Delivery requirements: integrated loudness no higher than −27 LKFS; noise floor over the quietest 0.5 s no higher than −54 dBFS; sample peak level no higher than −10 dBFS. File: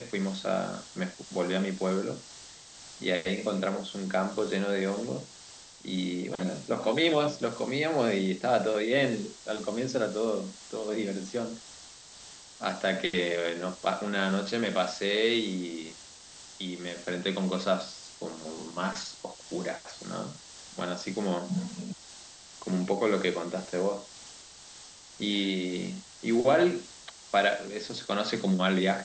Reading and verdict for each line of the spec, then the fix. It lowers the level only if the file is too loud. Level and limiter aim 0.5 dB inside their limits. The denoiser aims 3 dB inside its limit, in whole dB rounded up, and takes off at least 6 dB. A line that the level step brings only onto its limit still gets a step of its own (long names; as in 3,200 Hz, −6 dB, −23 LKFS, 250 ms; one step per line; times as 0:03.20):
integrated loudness −30.5 LKFS: in spec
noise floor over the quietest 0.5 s −50 dBFS: out of spec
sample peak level −11.5 dBFS: in spec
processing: broadband denoise 7 dB, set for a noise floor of −50 dBFS